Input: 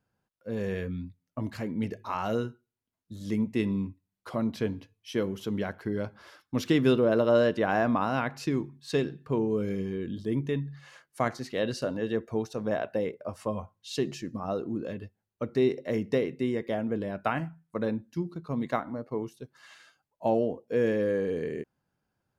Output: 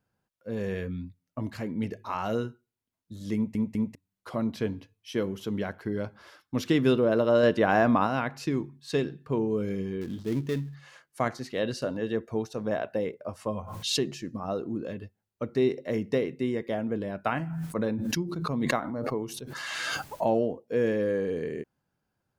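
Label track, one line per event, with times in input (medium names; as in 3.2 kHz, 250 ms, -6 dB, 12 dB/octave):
3.350000	3.350000	stutter in place 0.20 s, 3 plays
7.430000	8.070000	gain +3.5 dB
10.010000	10.750000	dead-time distortion of 0.13 ms
13.580000	14.050000	swell ahead of each attack at most 48 dB/s
17.320000	20.620000	swell ahead of each attack at most 21 dB/s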